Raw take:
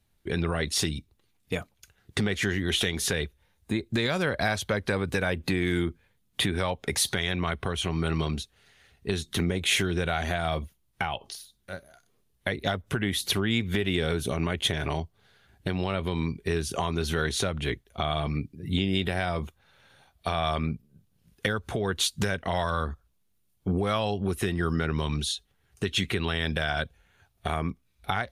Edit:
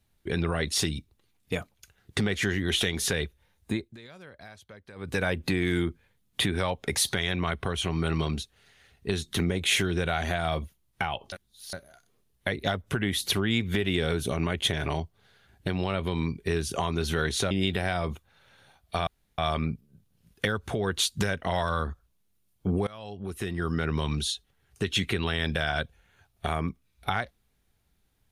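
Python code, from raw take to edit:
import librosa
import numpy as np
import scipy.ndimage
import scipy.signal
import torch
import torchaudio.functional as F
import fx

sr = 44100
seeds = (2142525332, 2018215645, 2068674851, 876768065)

y = fx.edit(x, sr, fx.fade_down_up(start_s=3.71, length_s=1.48, db=-21.0, fade_s=0.24),
    fx.reverse_span(start_s=11.32, length_s=0.41),
    fx.cut(start_s=17.51, length_s=1.32),
    fx.insert_room_tone(at_s=20.39, length_s=0.31),
    fx.fade_in_from(start_s=23.88, length_s=1.05, floor_db=-23.5), tone=tone)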